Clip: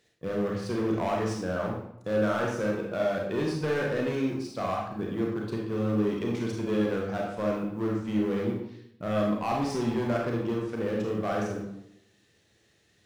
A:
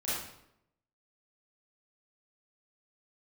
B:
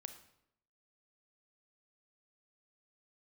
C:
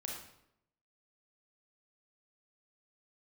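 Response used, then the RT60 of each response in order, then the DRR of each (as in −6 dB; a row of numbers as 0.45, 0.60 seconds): C; 0.80, 0.75, 0.80 seconds; −11.0, 8.0, −1.5 decibels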